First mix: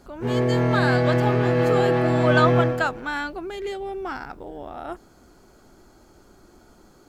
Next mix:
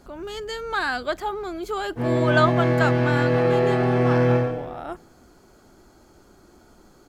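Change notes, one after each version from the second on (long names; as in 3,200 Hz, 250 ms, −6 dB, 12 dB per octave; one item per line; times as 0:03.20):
background: entry +1.75 s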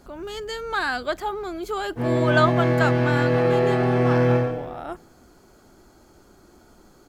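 master: add high-shelf EQ 12,000 Hz +3.5 dB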